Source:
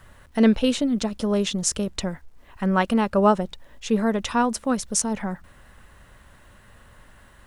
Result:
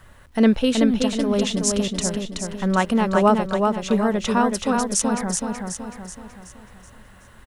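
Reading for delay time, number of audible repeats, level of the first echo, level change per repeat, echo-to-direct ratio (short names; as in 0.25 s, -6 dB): 0.376 s, 5, -4.0 dB, -6.5 dB, -3.0 dB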